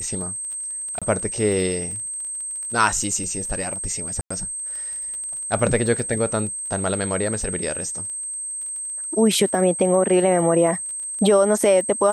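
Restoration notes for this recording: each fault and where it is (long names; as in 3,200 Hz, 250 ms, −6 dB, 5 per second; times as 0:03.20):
surface crackle 21 per second −31 dBFS
whistle 8,300 Hz −27 dBFS
0:00.99–0:01.02: drop-out 26 ms
0:04.21–0:04.30: drop-out 95 ms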